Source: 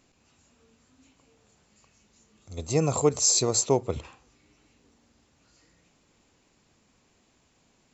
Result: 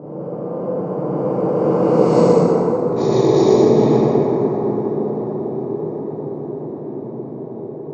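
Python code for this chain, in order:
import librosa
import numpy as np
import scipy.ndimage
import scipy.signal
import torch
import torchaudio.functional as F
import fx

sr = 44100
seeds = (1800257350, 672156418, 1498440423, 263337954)

p1 = fx.bin_compress(x, sr, power=0.2)
p2 = fx.doppler_pass(p1, sr, speed_mps=39, closest_m=18.0, pass_at_s=2.48)
p3 = fx.lowpass(p2, sr, hz=1000.0, slope=6)
p4 = np.sign(p3) * np.maximum(np.abs(p3) - 10.0 ** (-48.5 / 20.0), 0.0)
p5 = p3 + F.gain(torch.from_numpy(p4), -5.0).numpy()
p6 = scipy.signal.sosfilt(scipy.signal.butter(4, 160.0, 'highpass', fs=sr, output='sos'), p5)
p7 = fx.low_shelf(p6, sr, hz=360.0, db=7.0)
p8 = fx.over_compress(p7, sr, threshold_db=-21.0, ratio=-0.5)
p9 = fx.dmg_crackle(p8, sr, seeds[0], per_s=130.0, level_db=-38.0)
p10 = fx.env_lowpass(p9, sr, base_hz=600.0, full_db=-11.5)
p11 = p10 + fx.echo_single(p10, sr, ms=123, db=-3.5, dry=0)
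p12 = fx.rev_plate(p11, sr, seeds[1], rt60_s=3.6, hf_ratio=0.4, predelay_ms=0, drr_db=-8.0)
y = F.gain(torch.from_numpy(p12), -2.5).numpy()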